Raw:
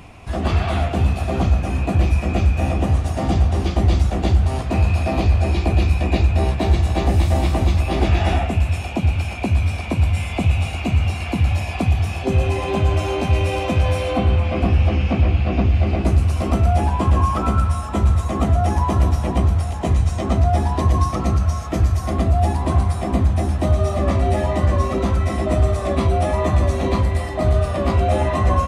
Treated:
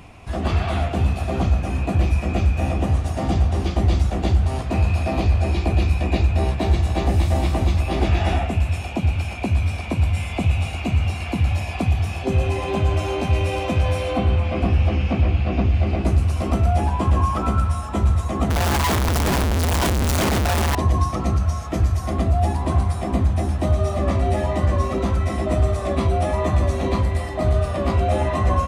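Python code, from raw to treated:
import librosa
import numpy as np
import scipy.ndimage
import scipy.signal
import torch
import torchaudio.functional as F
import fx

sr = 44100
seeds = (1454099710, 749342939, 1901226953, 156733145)

y = fx.clip_1bit(x, sr, at=(18.5, 20.75))
y = y * 10.0 ** (-2.0 / 20.0)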